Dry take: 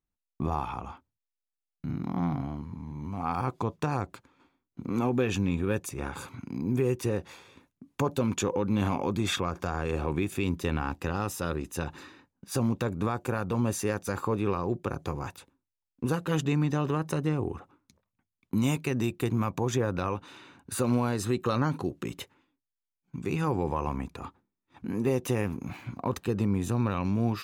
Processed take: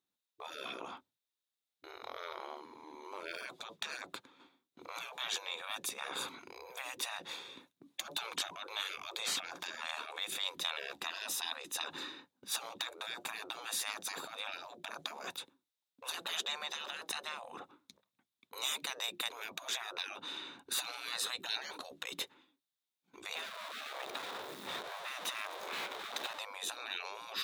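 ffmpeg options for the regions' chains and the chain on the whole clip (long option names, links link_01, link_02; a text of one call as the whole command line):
ffmpeg -i in.wav -filter_complex "[0:a]asettb=1/sr,asplit=3[link_01][link_02][link_03];[link_01]atrim=end=23.354[link_04];[link_02]atrim=start=23.35:end=26.39,asetpts=PTS-STARTPTS,afade=type=in:duration=0.004:curve=qsin,afade=type=out:start_time=3.036:duration=0.004:curve=qsin,aeval=exprs='val(0)+0.5*0.0237*sgn(val(0))':channel_layout=same,highshelf=frequency=2900:gain=-10.5,bandreject=frequency=60:width_type=h:width=6,bandreject=frequency=120:width_type=h:width=6,bandreject=frequency=180:width_type=h:width=6,bandreject=frequency=240:width_type=h:width=6,bandreject=frequency=300:width_type=h:width=6,bandreject=frequency=360:width_type=h:width=6,bandreject=frequency=420:width_type=h:width=6,bandreject=frequency=480:width_type=h:width=6[link_05];[link_03]atrim=start=26.386[link_06];[link_04][link_05]acrossfade=duration=0.004:curve1=hsin:curve2=qsin[link_07];[link_07][link_06]acrossfade=duration=0.004:curve1=qsin:curve2=hsin,afftfilt=real='re*lt(hypot(re,im),0.0355)':imag='im*lt(hypot(re,im),0.0355)':win_size=1024:overlap=0.75,highpass=240,equalizer=frequency=3700:width=4:gain=11.5,volume=1.5dB" out.wav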